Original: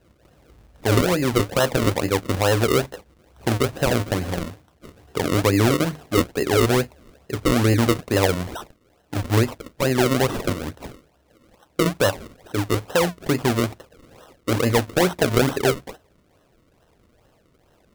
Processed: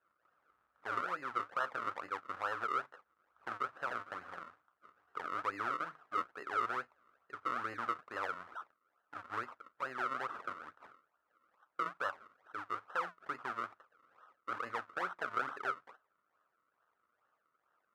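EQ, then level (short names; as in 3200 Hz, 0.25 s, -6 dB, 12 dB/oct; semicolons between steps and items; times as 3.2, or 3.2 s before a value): band-pass 1300 Hz, Q 5.4; -4.0 dB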